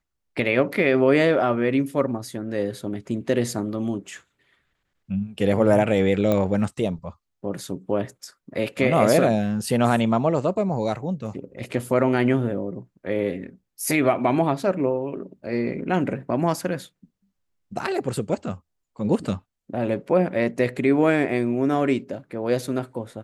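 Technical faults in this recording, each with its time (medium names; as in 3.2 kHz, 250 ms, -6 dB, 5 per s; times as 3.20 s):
6.32 s: pop -11 dBFS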